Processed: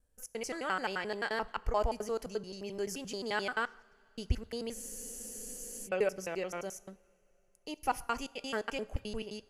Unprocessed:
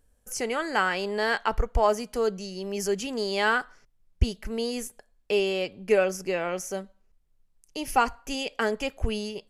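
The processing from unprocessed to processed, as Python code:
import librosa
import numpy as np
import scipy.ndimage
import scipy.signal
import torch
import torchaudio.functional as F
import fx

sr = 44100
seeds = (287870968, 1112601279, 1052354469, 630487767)

y = fx.block_reorder(x, sr, ms=87.0, group=2)
y = fx.rev_double_slope(y, sr, seeds[0], early_s=0.56, late_s=3.6, knee_db=-17, drr_db=18.0)
y = fx.spec_freeze(y, sr, seeds[1], at_s=4.77, hold_s=1.09)
y = y * librosa.db_to_amplitude(-8.5)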